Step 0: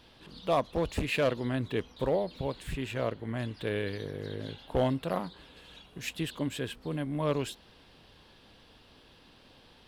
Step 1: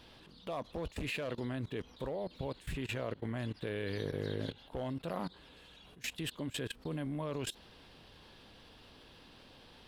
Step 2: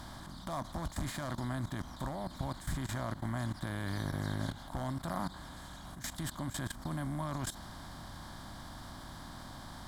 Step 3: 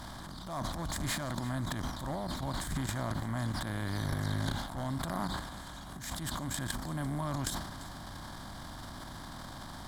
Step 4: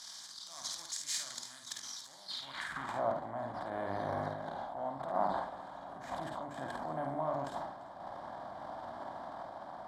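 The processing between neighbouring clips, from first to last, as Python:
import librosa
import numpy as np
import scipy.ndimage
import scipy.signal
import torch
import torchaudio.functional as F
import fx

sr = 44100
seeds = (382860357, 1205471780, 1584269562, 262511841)

y1 = fx.level_steps(x, sr, step_db=20)
y1 = y1 * 10.0 ** (2.5 / 20.0)
y2 = fx.bin_compress(y1, sr, power=0.6)
y2 = fx.fixed_phaser(y2, sr, hz=1100.0, stages=4)
y2 = y2 * 10.0 ** (2.5 / 20.0)
y3 = fx.transient(y2, sr, attack_db=-8, sustain_db=11)
y3 = y3 + 10.0 ** (-18.0 / 20.0) * np.pad(y3, (int(343 * sr / 1000.0), 0))[:len(y3)]
y3 = y3 * 10.0 ** (2.0 / 20.0)
y4 = fx.filter_sweep_bandpass(y3, sr, from_hz=5900.0, to_hz=680.0, start_s=2.19, end_s=3.02, q=2.6)
y4 = fx.tremolo_random(y4, sr, seeds[0], hz=3.5, depth_pct=55)
y4 = fx.room_early_taps(y4, sr, ms=(51, 72), db=(-5.0, -9.0))
y4 = y4 * 10.0 ** (10.5 / 20.0)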